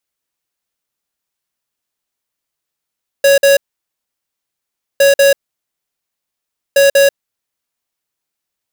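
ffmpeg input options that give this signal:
-f lavfi -i "aevalsrc='0.398*(2*lt(mod(556*t,1),0.5)-1)*clip(min(mod(mod(t,1.76),0.19),0.14-mod(mod(t,1.76),0.19))/0.005,0,1)*lt(mod(t,1.76),0.38)':d=5.28:s=44100"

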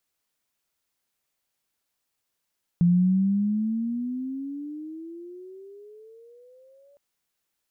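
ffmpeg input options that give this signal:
-f lavfi -i "aevalsrc='pow(10,(-15-38.5*t/4.16)/20)*sin(2*PI*171*4.16/(21*log(2)/12)*(exp(21*log(2)/12*t/4.16)-1))':d=4.16:s=44100"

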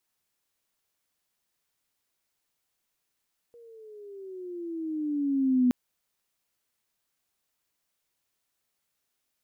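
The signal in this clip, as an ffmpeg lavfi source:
-f lavfi -i "aevalsrc='pow(10,(-18+30.5*(t/2.17-1))/20)*sin(2*PI*477*2.17/(-11.5*log(2)/12)*(exp(-11.5*log(2)/12*t/2.17)-1))':d=2.17:s=44100"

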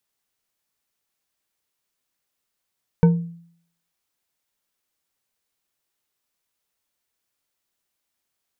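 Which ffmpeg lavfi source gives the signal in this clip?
-f lavfi -i "aevalsrc='0.398*pow(10,-3*t/0.61)*sin(2*PI*169*t)+0.158*pow(10,-3*t/0.3)*sin(2*PI*465.9*t)+0.0631*pow(10,-3*t/0.187)*sin(2*PI*913.3*t)+0.0251*pow(10,-3*t/0.132)*sin(2*PI*1509.7*t)+0.01*pow(10,-3*t/0.099)*sin(2*PI*2254.5*t)':d=0.89:s=44100"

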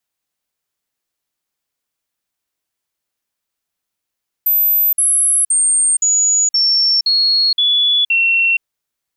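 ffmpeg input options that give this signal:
-f lavfi -i "aevalsrc='0.299*clip(min(mod(t,0.52),0.47-mod(t,0.52))/0.005,0,1)*sin(2*PI*13700*pow(2,-floor(t/0.52)/3)*mod(t,0.52))':d=4.16:s=44100"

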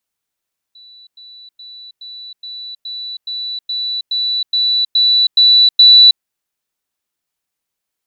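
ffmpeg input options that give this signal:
-f lavfi -i "aevalsrc='pow(10,(-38.5+3*floor(t/0.42))/20)*sin(2*PI*3960*t)*clip(min(mod(t,0.42),0.32-mod(t,0.42))/0.005,0,1)':d=5.46:s=44100"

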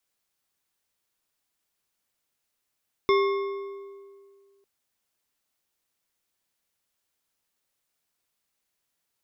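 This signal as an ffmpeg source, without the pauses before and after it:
-f lavfi -i "aevalsrc='0.133*pow(10,-3*t/2.07)*sin(2*PI*396*t)+0.075*pow(10,-3*t/1.527)*sin(2*PI*1091.8*t)+0.0422*pow(10,-3*t/1.248)*sin(2*PI*2140*t)+0.0237*pow(10,-3*t/1.073)*sin(2*PI*3537.5*t)+0.0133*pow(10,-3*t/0.952)*sin(2*PI*5282.6*t)':d=1.55:s=44100"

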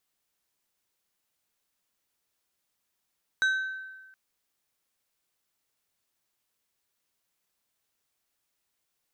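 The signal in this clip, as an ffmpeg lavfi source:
-f lavfi -i "aevalsrc='0.1*pow(10,-3*t/1.32)*sin(2*PI*1540*t)+0.0316*pow(10,-3*t/0.695)*sin(2*PI*3850*t)+0.01*pow(10,-3*t/0.5)*sin(2*PI*6160*t)+0.00316*pow(10,-3*t/0.428)*sin(2*PI*7700*t)+0.001*pow(10,-3*t/0.356)*sin(2*PI*10010*t)':d=0.72:s=44100"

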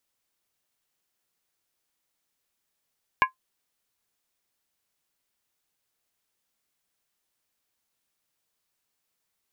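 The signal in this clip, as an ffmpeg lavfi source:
-f lavfi -i "aevalsrc='0.237*pow(10,-3*t/0.12)*sin(2*PI*1040*t)+0.15*pow(10,-3*t/0.095)*sin(2*PI*1657.8*t)+0.0944*pow(10,-3*t/0.082)*sin(2*PI*2221.4*t)+0.0596*pow(10,-3*t/0.079)*sin(2*PI*2387.8*t)+0.0376*pow(10,-3*t/0.074)*sin(2*PI*2759.1*t)':d=0.63:s=44100"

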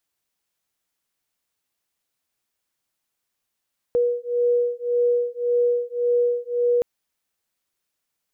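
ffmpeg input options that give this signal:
-f lavfi -i "aevalsrc='0.0841*(sin(2*PI*482*t)+sin(2*PI*483.8*t))':d=2.87:s=44100"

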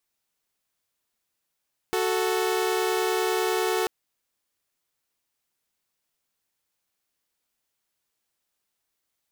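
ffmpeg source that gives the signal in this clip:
-f lavfi -i "aevalsrc='0.0708*((2*mod(369.99*t,1)-1)+(2*mod(440*t,1)-1))':d=1.94:s=44100"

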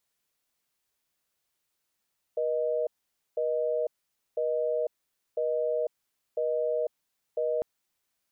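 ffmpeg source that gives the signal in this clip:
-f lavfi -i "aevalsrc='0.0398*(sin(2*PI*480*t)+sin(2*PI*620*t))*clip(min(mod(t,1),0.5-mod(t,1))/0.005,0,1)':d=5.25:s=44100"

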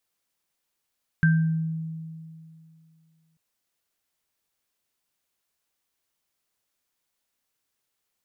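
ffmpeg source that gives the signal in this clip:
-f lavfi -i "aevalsrc='0.178*pow(10,-3*t/2.49)*sin(2*PI*161*t)+0.0944*pow(10,-3*t/0.5)*sin(2*PI*1570*t)':d=2.14:s=44100"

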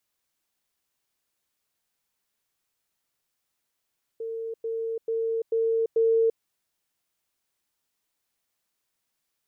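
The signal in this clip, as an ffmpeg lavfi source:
-f lavfi -i "aevalsrc='pow(10,(-30+3*floor(t/0.44))/20)*sin(2*PI*453*t)*clip(min(mod(t,0.44),0.34-mod(t,0.44))/0.005,0,1)':d=2.2:s=44100"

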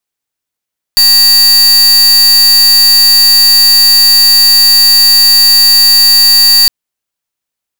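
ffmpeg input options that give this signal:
-f lavfi -i "aevalsrc='0.562*(2*lt(mod(4600*t,1),0.43)-1)':d=5.71:s=44100"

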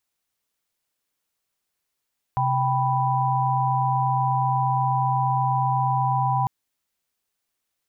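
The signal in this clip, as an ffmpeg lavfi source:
-f lavfi -i "aevalsrc='0.0668*(sin(2*PI*130.81*t)+sin(2*PI*783.99*t)+sin(2*PI*987.77*t))':d=4.1:s=44100"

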